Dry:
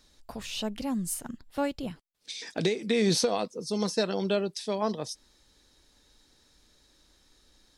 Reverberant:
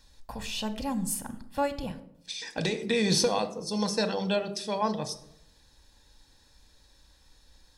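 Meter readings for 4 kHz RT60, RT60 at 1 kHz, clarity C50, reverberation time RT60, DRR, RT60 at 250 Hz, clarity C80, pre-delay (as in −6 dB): 0.45 s, 0.75 s, 14.0 dB, 0.80 s, 9.5 dB, 0.85 s, 17.0 dB, 4 ms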